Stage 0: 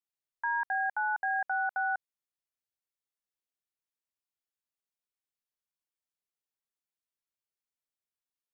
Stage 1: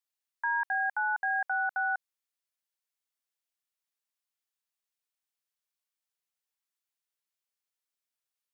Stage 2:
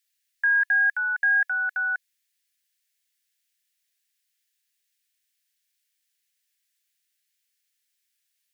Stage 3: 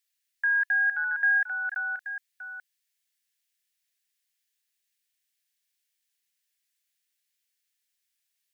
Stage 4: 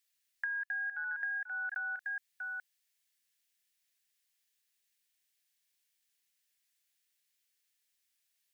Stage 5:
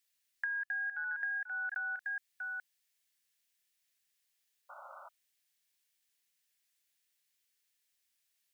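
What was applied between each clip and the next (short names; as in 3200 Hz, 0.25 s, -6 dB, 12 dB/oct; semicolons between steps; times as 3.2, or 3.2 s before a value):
HPF 1000 Hz 6 dB/oct; gain +3.5 dB
EQ curve 470 Hz 0 dB, 980 Hz -16 dB, 1700 Hz +13 dB
reverse delay 0.436 s, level -10.5 dB; gain -3.5 dB
compressor 10:1, threshold -35 dBFS, peak gain reduction 14.5 dB
painted sound noise, 4.69–5.09, 530–1500 Hz -51 dBFS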